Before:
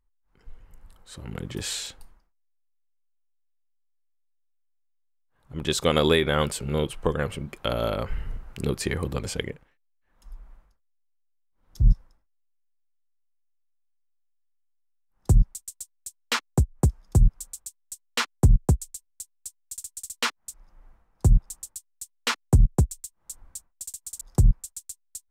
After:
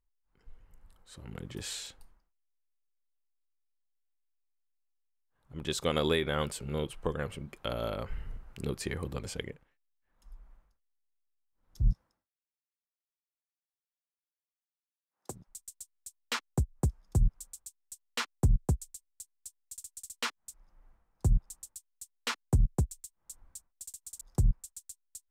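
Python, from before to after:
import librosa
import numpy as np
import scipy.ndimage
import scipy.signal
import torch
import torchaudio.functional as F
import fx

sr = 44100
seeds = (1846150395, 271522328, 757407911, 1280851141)

y = fx.highpass(x, sr, hz=fx.line((11.9, 110.0), (15.47, 430.0)), slope=12, at=(11.9, 15.47), fade=0.02)
y = y * 10.0 ** (-8.0 / 20.0)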